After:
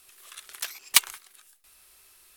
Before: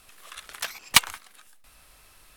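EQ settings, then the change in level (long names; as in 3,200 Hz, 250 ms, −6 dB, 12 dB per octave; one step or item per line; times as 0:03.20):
spectral tilt +3 dB per octave
low-shelf EQ 140 Hz +7.5 dB
parametric band 380 Hz +12.5 dB 0.24 octaves
−8.0 dB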